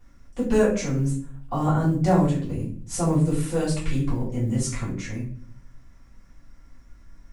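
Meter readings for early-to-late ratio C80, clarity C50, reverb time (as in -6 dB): 10.5 dB, 5.5 dB, 0.50 s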